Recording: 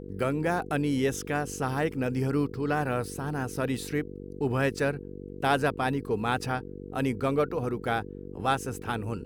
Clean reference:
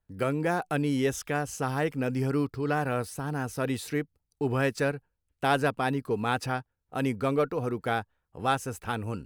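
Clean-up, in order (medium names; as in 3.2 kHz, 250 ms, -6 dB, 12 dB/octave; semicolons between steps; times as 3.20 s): de-hum 48.1 Hz, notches 10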